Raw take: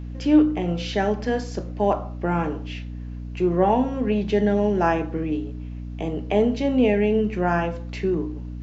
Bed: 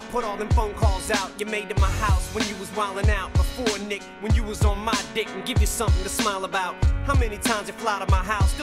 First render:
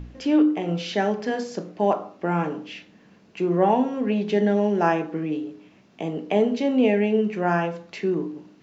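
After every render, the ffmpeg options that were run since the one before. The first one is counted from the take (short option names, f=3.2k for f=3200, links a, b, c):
-af "bandreject=f=60:t=h:w=4,bandreject=f=120:t=h:w=4,bandreject=f=180:t=h:w=4,bandreject=f=240:t=h:w=4,bandreject=f=300:t=h:w=4,bandreject=f=360:t=h:w=4,bandreject=f=420:t=h:w=4,bandreject=f=480:t=h:w=4"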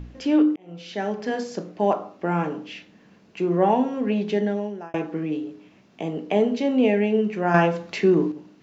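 -filter_complex "[0:a]asettb=1/sr,asplit=3[a][b][c];[a]atrim=end=7.544[d];[b]atrim=start=7.54:end=8.32,asetpts=PTS-STARTPTS,afade=t=in:d=0.004:c=qsin,afade=t=out:st=0.776:d=0.004:c=qsin,acontrast=64[e];[c]atrim=start=8.316[f];[d][e]acrossfade=d=0.004:c1=hsin:c2=qsin[g];[g][f]acrossfade=d=0.004:c1=qsin:c2=hsin,asplit=3[h][i][j];[h]atrim=end=0.56,asetpts=PTS-STARTPTS,afade=t=out:st=0.556:d=0.004:c=hsin[k];[i]atrim=start=0.56:end=4.94,asetpts=PTS-STARTPTS,afade=t=in:d=0.79,afade=t=out:st=3.68:d=0.7[l];[j]atrim=start=4.94,asetpts=PTS-STARTPTS,afade=t=in:d=0.004:c=hsin[m];[k][l][m]concat=n=3:v=0:a=1"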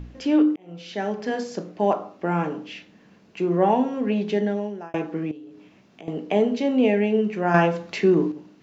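-filter_complex "[0:a]asettb=1/sr,asplit=3[a][b][c];[a]atrim=end=5.314[d];[b]atrim=start=5.31:end=6.08,asetpts=PTS-STARTPTS,afade=t=in:d=0.004:c=qsin,afade=t=out:st=0.766:d=0.004:c=qsin,acompressor=threshold=-42dB:ratio=3:attack=3.2:release=140:knee=1:detection=peak[e];[c]atrim=start=6.076[f];[d][e]acrossfade=d=0.004:c1=hsin:c2=qsin[g];[g][f]acrossfade=d=0.004:c1=qsin:c2=hsin"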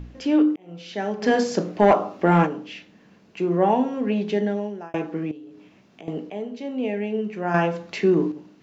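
-filter_complex "[0:a]asplit=3[a][b][c];[a]afade=t=out:st=1.21:d=0.02[d];[b]aeval=exprs='0.398*sin(PI/2*1.58*val(0)/0.398)':c=same,afade=t=in:st=1.21:d=0.02,afade=t=out:st=2.45:d=0.02[e];[c]afade=t=in:st=2.45:d=0.02[f];[d][e][f]amix=inputs=3:normalize=0,asplit=2[g][h];[g]atrim=end=6.3,asetpts=PTS-STARTPTS,afade=t=out:st=6.296:d=0.004:c=hsin:silence=0.223872[i];[h]atrim=start=6.3,asetpts=PTS-STARTPTS,afade=t=in:d=1.98:silence=0.223872[j];[i][j]concat=n=2:v=0:a=1"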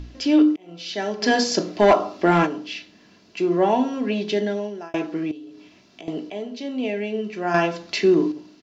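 -af "equalizer=f=4.7k:t=o:w=1.2:g=11.5,aecho=1:1:3:0.38"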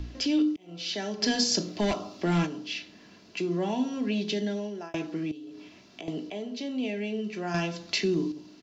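-filter_complex "[0:a]acrossover=split=220|3000[a][b][c];[b]acompressor=threshold=-38dB:ratio=2.5[d];[a][d][c]amix=inputs=3:normalize=0"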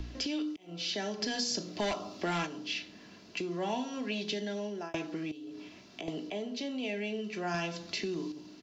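-filter_complex "[0:a]acrossover=split=500[a][b];[a]acompressor=threshold=-37dB:ratio=6[c];[b]alimiter=limit=-23.5dB:level=0:latency=1:release=307[d];[c][d]amix=inputs=2:normalize=0"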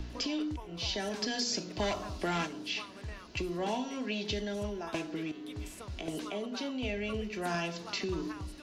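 -filter_complex "[1:a]volume=-22.5dB[a];[0:a][a]amix=inputs=2:normalize=0"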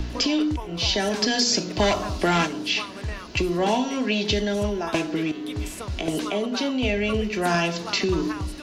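-af "volume=11.5dB"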